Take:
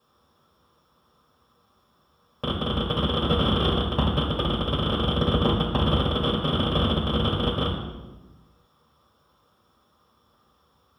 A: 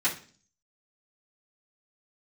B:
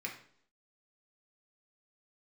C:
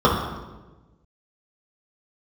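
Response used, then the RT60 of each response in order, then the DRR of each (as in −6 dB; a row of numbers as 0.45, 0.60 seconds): C; 0.40, 0.60, 1.2 seconds; −11.0, −1.0, −7.0 decibels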